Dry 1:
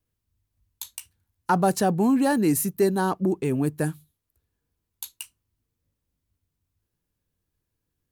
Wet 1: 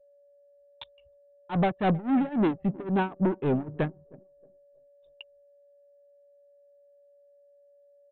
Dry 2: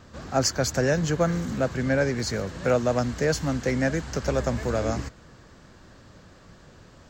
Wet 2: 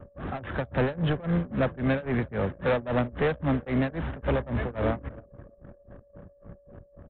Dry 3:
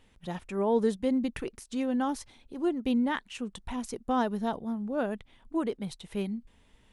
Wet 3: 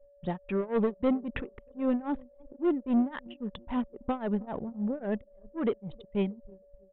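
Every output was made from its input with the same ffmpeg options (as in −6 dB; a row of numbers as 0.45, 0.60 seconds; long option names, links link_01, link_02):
-af "aresample=8000,asoftclip=type=tanh:threshold=-26dB,aresample=44100,tremolo=f=3.7:d=0.91,aecho=1:1:315|630|945|1260:0.075|0.0412|0.0227|0.0125,acontrast=63,agate=range=-33dB:threshold=-55dB:ratio=3:detection=peak,aemphasis=mode=reproduction:type=cd,aeval=exprs='val(0)+0.00355*sin(2*PI*570*n/s)':channel_layout=same,anlmdn=0.251"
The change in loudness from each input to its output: −4.0, −3.0, −0.5 LU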